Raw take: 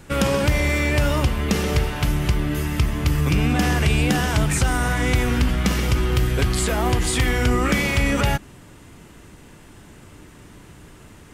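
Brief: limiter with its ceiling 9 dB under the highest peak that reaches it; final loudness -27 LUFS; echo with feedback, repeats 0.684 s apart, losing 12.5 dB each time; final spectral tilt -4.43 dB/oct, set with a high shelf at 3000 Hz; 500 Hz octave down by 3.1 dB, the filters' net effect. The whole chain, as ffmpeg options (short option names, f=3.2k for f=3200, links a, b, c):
-af "equalizer=f=500:t=o:g=-4,highshelf=f=3k:g=3.5,alimiter=limit=-15.5dB:level=0:latency=1,aecho=1:1:684|1368|2052:0.237|0.0569|0.0137,volume=-3dB"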